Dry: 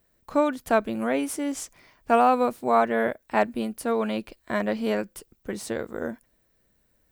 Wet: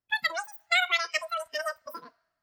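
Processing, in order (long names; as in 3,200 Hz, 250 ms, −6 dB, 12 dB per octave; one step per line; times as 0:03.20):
change of speed 2.93×
coupled-rooms reverb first 0.79 s, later 3 s, from −19 dB, DRR 13.5 dB
noise reduction from a noise print of the clip's start 19 dB
level −3.5 dB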